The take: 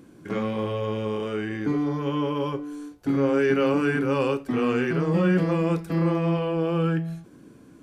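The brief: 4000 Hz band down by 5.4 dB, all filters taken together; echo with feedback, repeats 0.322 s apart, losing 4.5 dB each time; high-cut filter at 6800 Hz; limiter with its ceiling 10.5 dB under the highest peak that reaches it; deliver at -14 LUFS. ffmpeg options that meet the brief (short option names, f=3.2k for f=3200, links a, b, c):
-af "lowpass=6.8k,equalizer=f=4k:t=o:g=-8.5,alimiter=limit=-22dB:level=0:latency=1,aecho=1:1:322|644|966|1288|1610|1932|2254|2576|2898:0.596|0.357|0.214|0.129|0.0772|0.0463|0.0278|0.0167|0.01,volume=14.5dB"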